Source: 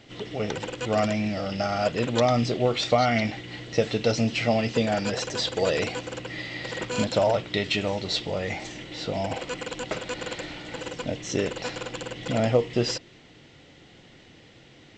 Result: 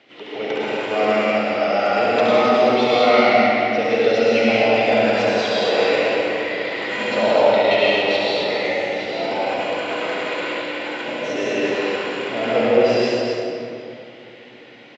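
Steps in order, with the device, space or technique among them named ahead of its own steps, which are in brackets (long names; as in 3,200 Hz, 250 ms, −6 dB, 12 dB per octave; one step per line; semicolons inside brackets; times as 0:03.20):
station announcement (band-pass filter 350–3,500 Hz; parametric band 2,400 Hz +4 dB 0.37 octaves; loudspeakers that aren't time-aligned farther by 24 metres −4 dB, 89 metres −6 dB; convolution reverb RT60 2.6 s, pre-delay 96 ms, DRR −7 dB)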